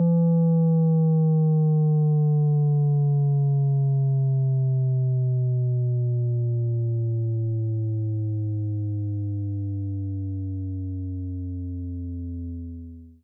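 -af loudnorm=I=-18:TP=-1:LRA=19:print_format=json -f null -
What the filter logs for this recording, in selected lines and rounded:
"input_i" : "-24.5",
"input_tp" : "-17.1",
"input_lra" : "11.6",
"input_thresh" : "-34.8",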